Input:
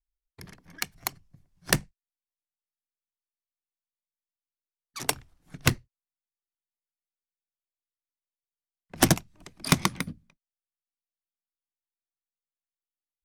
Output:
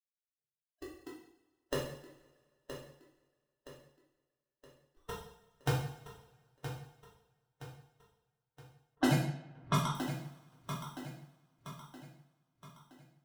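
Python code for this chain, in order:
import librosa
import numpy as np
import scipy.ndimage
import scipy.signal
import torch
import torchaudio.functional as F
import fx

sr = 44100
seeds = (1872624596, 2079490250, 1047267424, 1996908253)

p1 = fx.bin_expand(x, sr, power=3.0)
p2 = fx.cabinet(p1, sr, low_hz=120.0, low_slope=24, high_hz=4600.0, hz=(140.0, 200.0, 490.0, 1400.0, 2300.0, 4100.0), db=(9, -8, 5, -10, -9, 7))
p3 = fx.sample_hold(p2, sr, seeds[0], rate_hz=2300.0, jitter_pct=0)
p4 = p3 + fx.echo_feedback(p3, sr, ms=970, feedback_pct=43, wet_db=-10.0, dry=0)
p5 = fx.rev_double_slope(p4, sr, seeds[1], early_s=0.64, late_s=2.0, knee_db=-21, drr_db=-6.5)
p6 = fx.env_lowpass(p5, sr, base_hz=1600.0, full_db=-16.5, at=(8.95, 9.95))
y = p6 * librosa.db_to_amplitude(-9.0)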